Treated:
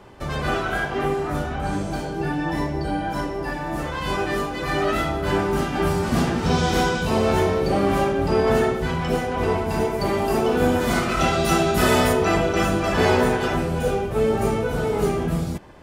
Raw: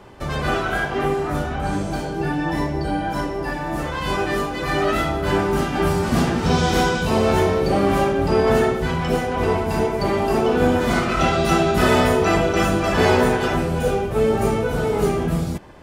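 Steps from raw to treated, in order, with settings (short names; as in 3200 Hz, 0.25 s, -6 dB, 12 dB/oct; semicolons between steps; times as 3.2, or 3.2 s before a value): 9.79–12.12 high shelf 10000 Hz -> 5800 Hz +9 dB; gain -2 dB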